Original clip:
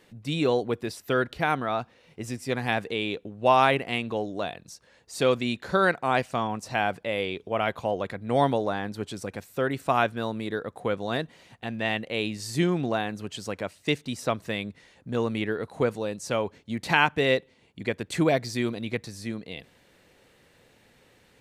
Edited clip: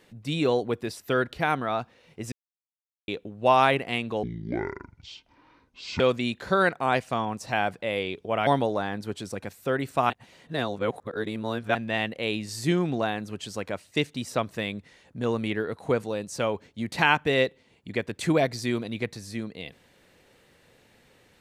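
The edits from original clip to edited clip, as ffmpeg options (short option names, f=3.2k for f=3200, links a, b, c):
-filter_complex "[0:a]asplit=8[a][b][c][d][e][f][g][h];[a]atrim=end=2.32,asetpts=PTS-STARTPTS,afade=t=out:st=2.316:d=0.004:c=hsin[i];[b]atrim=start=2.32:end=3.08,asetpts=PTS-STARTPTS,volume=0[j];[c]atrim=start=3.08:end=4.234,asetpts=PTS-STARTPTS,afade=t=in:d=0.004:c=hsin[k];[d]atrim=start=4.23:end=5.22,asetpts=PTS-STARTPTS,asetrate=24696,aresample=44100,atrim=end_sample=77962,asetpts=PTS-STARTPTS[l];[e]atrim=start=5.216:end=7.692[m];[f]atrim=start=8.378:end=10.012[n];[g]atrim=start=10.008:end=11.662,asetpts=PTS-STARTPTS,areverse[o];[h]atrim=start=11.658[p];[i][j][k]concat=n=3:v=0:a=1[q];[q][l]acrossfade=d=0.004:c1=hsin:c2=hsin[r];[r][m]acrossfade=d=0.004:c1=hsin:c2=hsin[s];[s][n]acrossfade=d=0.004:c1=hsin:c2=hsin[t];[t][o]acrossfade=d=0.004:c1=hsin:c2=hsin[u];[u][p]acrossfade=d=0.004:c1=hsin:c2=hsin"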